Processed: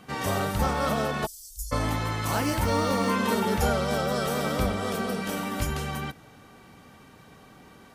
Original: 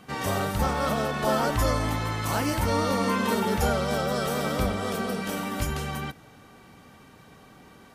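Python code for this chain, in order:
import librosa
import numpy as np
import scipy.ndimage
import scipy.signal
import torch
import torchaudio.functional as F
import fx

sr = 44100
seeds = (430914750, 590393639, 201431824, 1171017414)

y = fx.cheby2_bandstop(x, sr, low_hz=130.0, high_hz=2100.0, order=4, stop_db=60, at=(1.25, 1.71), fade=0.02)
y = fx.quant_float(y, sr, bits=4, at=(2.28, 3.13))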